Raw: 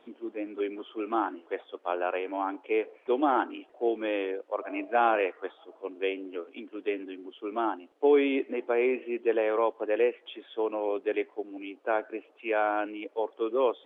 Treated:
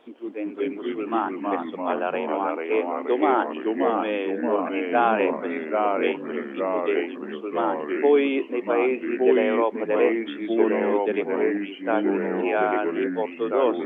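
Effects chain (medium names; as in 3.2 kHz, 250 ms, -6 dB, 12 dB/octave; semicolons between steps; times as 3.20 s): ever faster or slower copies 184 ms, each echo -2 st, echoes 3; trim +3.5 dB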